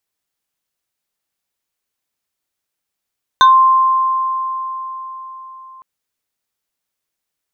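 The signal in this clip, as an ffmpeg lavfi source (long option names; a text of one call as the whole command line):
ffmpeg -f lavfi -i "aevalsrc='0.631*pow(10,-3*t/4.47)*sin(2*PI*1050*t+0.94*pow(10,-3*t/0.2)*sin(2*PI*2.45*1050*t))':duration=2.41:sample_rate=44100" out.wav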